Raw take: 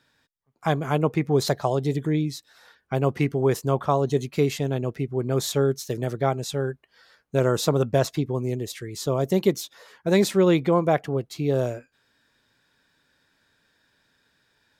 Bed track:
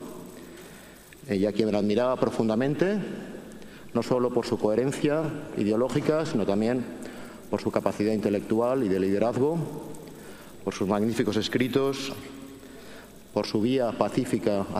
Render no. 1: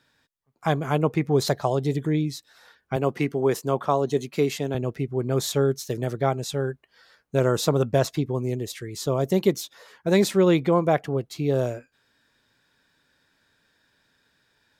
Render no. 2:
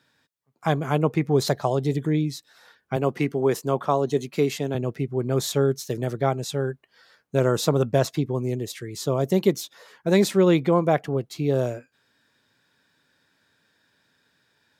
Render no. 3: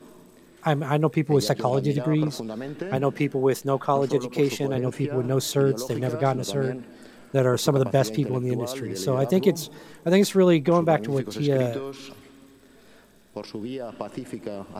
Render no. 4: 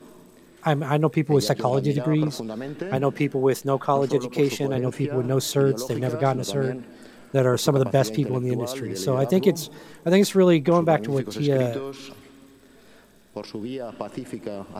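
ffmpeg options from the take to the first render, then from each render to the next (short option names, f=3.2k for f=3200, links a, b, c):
-filter_complex "[0:a]asettb=1/sr,asplit=3[a][b][c];[a]atrim=end=2.964[d];[b]atrim=start=2.96:end=4.75,asetpts=PTS-STARTPTS,afade=t=in:d=0.004:c=qsin,afade=t=out:st=1.786:d=0.004:c=qsin,highpass=170[e];[c]atrim=start=4.746[f];[d][e]acrossfade=d=0.004:c1=hsin:c2=qsin[g];[g][f]acrossfade=d=0.004:c1=qsin:c2=hsin"
-af "highpass=110,lowshelf=f=150:g=4"
-filter_complex "[1:a]volume=-8.5dB[a];[0:a][a]amix=inputs=2:normalize=0"
-af "volume=1dB"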